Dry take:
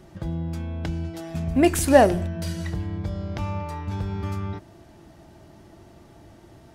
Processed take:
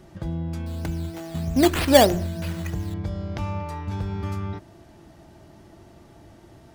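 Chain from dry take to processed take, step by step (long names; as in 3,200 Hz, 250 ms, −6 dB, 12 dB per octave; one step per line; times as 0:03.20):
0:00.66–0:02.94: sample-and-hold swept by an LFO 9×, swing 60% 3.2 Hz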